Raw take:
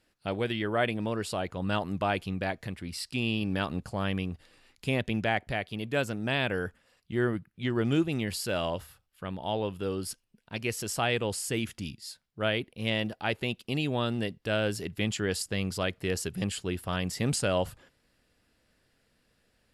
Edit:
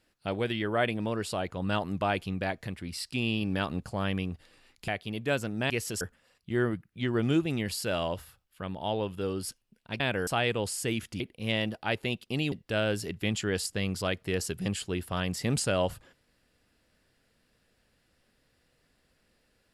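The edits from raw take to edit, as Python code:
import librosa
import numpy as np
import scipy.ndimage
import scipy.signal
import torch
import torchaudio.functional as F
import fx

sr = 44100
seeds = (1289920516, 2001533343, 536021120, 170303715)

y = fx.edit(x, sr, fx.cut(start_s=4.88, length_s=0.66),
    fx.swap(start_s=6.36, length_s=0.27, other_s=10.62, other_length_s=0.31),
    fx.cut(start_s=11.86, length_s=0.72),
    fx.cut(start_s=13.9, length_s=0.38), tone=tone)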